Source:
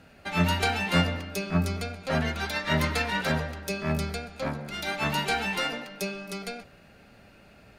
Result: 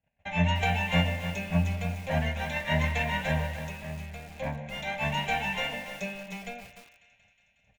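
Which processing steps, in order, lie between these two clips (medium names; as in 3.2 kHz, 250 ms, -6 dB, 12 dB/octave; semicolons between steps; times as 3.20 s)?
gate -50 dBFS, range -31 dB; bass shelf 200 Hz +3 dB; 3.55–4.31 s: compression 2.5:1, threshold -38 dBFS, peak gain reduction 11 dB; static phaser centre 1.3 kHz, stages 6; thinning echo 182 ms, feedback 75%, high-pass 680 Hz, level -16.5 dB; resampled via 16 kHz; bit-crushed delay 297 ms, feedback 35%, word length 7-bit, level -9 dB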